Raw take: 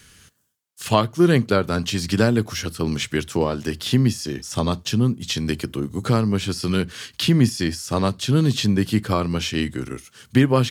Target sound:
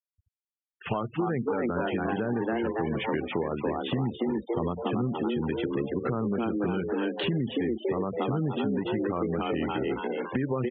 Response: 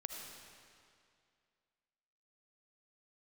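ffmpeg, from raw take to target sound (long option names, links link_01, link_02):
-filter_complex "[0:a]equalizer=frequency=650:width_type=o:width=0.69:gain=7,asplit=2[link_01][link_02];[link_02]asplit=6[link_03][link_04][link_05][link_06][link_07][link_08];[link_03]adelay=281,afreqshift=110,volume=-4dB[link_09];[link_04]adelay=562,afreqshift=220,volume=-10dB[link_10];[link_05]adelay=843,afreqshift=330,volume=-16dB[link_11];[link_06]adelay=1124,afreqshift=440,volume=-22.1dB[link_12];[link_07]adelay=1405,afreqshift=550,volume=-28.1dB[link_13];[link_08]adelay=1686,afreqshift=660,volume=-34.1dB[link_14];[link_09][link_10][link_11][link_12][link_13][link_14]amix=inputs=6:normalize=0[link_15];[link_01][link_15]amix=inputs=2:normalize=0,asoftclip=type=hard:threshold=-3dB,equalizer=frequency=100:width_type=o:width=0.33:gain=-11,equalizer=frequency=400:width_type=o:width=0.33:gain=3,equalizer=frequency=630:width_type=o:width=0.33:gain=-8,alimiter=limit=-11.5dB:level=0:latency=1:release=55,lowpass=frequency=2800:width=0.5412,lowpass=frequency=2800:width=1.3066,acompressor=threshold=-26dB:ratio=4,afftfilt=real='re*gte(hypot(re,im),0.02)':imag='im*gte(hypot(re,im),0.02)':win_size=1024:overlap=0.75"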